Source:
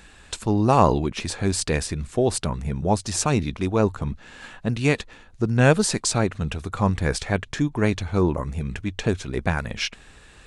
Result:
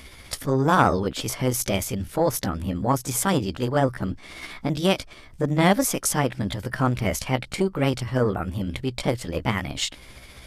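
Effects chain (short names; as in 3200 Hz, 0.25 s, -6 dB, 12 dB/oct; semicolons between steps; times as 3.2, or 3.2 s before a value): delay-line pitch shifter +4.5 st; in parallel at -2 dB: compressor, threshold -36 dBFS, peak gain reduction 22.5 dB; on the sum: core saturation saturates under 630 Hz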